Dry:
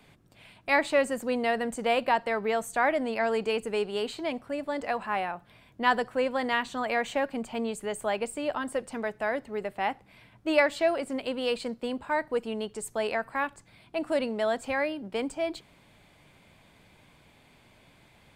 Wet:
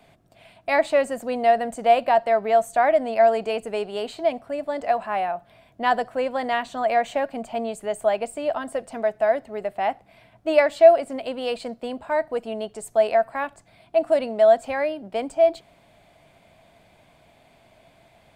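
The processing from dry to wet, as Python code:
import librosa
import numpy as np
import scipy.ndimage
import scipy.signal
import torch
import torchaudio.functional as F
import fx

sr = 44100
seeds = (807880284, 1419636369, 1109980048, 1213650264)

y = fx.peak_eq(x, sr, hz=670.0, db=14.5, octaves=0.32)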